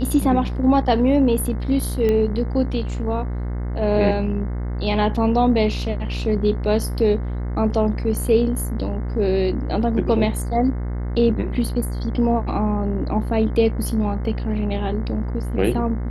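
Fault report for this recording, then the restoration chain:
buzz 60 Hz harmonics 36 -25 dBFS
2.09 pop -11 dBFS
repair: de-click; de-hum 60 Hz, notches 36

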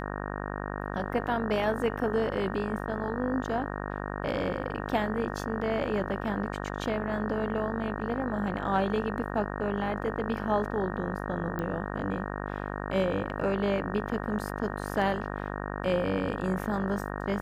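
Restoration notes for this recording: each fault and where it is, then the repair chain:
buzz 50 Hz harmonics 37 -35 dBFS
11.59 pop -21 dBFS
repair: de-click; de-hum 50 Hz, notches 37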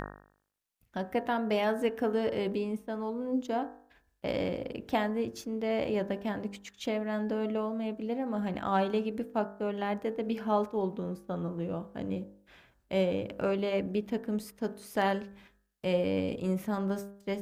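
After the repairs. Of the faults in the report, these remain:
none

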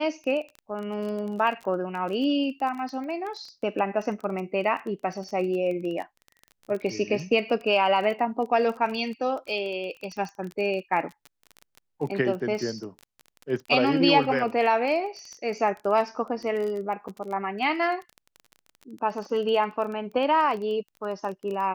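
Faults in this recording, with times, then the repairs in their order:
crackle 20/s -32 dBFS
17.08–17.09 gap 6.1 ms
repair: de-click; interpolate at 17.08, 6.1 ms

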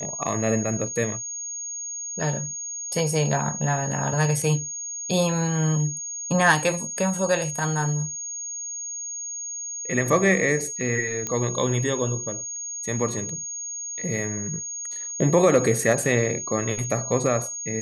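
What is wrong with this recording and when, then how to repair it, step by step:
tone 6600 Hz -30 dBFS
11.27 pop -13 dBFS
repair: de-click; notch 6600 Hz, Q 30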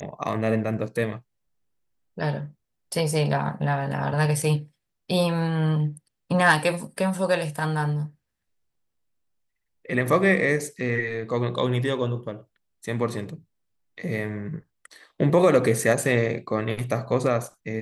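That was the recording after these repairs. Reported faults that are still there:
none

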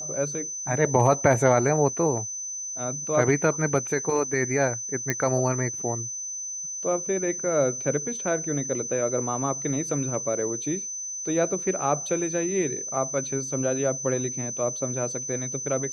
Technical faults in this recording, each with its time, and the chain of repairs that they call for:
tone 6100 Hz -31 dBFS
5.1 pop -10 dBFS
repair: de-click; notch 6100 Hz, Q 30

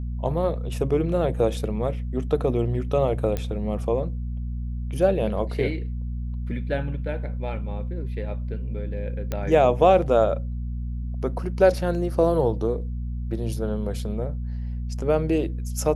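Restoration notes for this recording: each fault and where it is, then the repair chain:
hum 60 Hz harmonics 4 -29 dBFS
3.37 pop -14 dBFS
9.32 pop -14 dBFS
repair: de-click; de-hum 60 Hz, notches 4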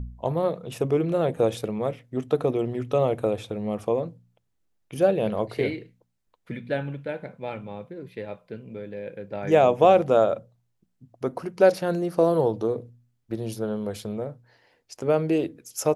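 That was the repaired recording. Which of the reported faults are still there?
none

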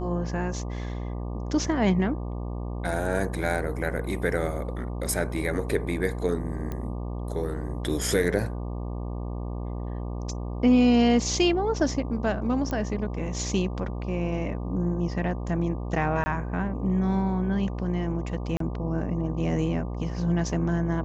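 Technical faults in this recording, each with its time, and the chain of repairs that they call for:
buzz 60 Hz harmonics 20 -32 dBFS
6.72 pop -20 dBFS
12.71 pop -18 dBFS
16.24–16.26 gap 20 ms
18.57–18.6 gap 33 ms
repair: de-click; de-hum 60 Hz, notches 20; interpolate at 16.24, 20 ms; interpolate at 18.57, 33 ms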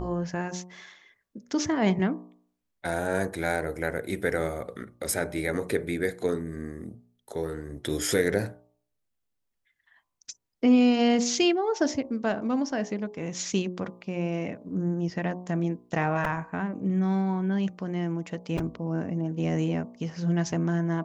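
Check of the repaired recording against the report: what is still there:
none

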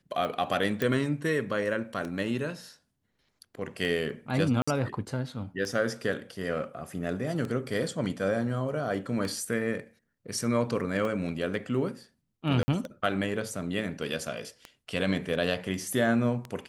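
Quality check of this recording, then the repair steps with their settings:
tick 33 1/3 rpm -22 dBFS
0.82 pop -15 dBFS
4.62–4.67 gap 55 ms
12.63–12.68 gap 50 ms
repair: de-click; interpolate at 4.62, 55 ms; interpolate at 12.63, 50 ms

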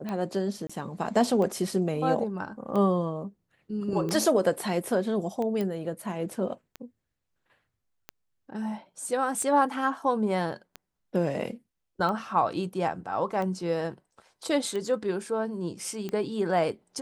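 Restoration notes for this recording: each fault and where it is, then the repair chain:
tick 45 rpm -21 dBFS
0.67–0.69 gap 25 ms
5.61 pop -19 dBFS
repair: de-click; interpolate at 0.67, 25 ms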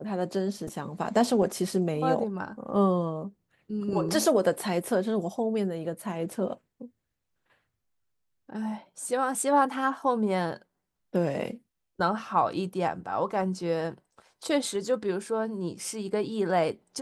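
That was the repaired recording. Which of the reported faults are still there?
none

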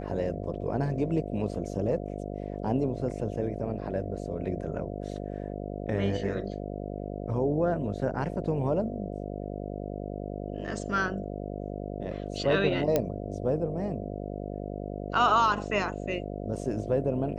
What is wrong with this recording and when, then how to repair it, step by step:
buzz 50 Hz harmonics 14 -36 dBFS
12.96 pop -11 dBFS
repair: de-click; de-hum 50 Hz, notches 14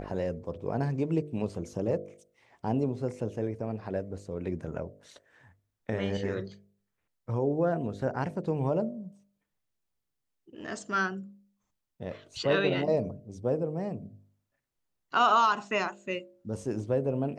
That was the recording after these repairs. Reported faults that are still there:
12.96 pop

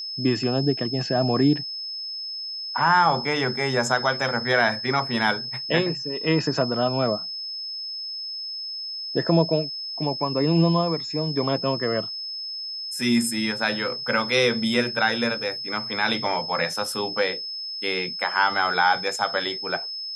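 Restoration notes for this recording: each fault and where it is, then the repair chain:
tone 5200 Hz -30 dBFS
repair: notch 5200 Hz, Q 30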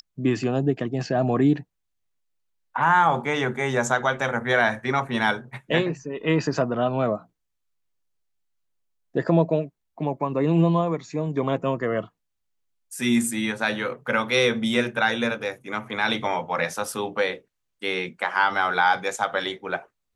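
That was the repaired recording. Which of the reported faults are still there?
none

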